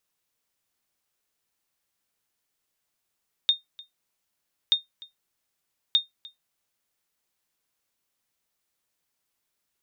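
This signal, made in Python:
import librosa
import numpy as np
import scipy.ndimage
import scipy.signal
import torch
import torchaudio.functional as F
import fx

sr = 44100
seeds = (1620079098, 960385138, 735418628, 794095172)

y = fx.sonar_ping(sr, hz=3670.0, decay_s=0.15, every_s=1.23, pings=3, echo_s=0.3, echo_db=-23.0, level_db=-11.5)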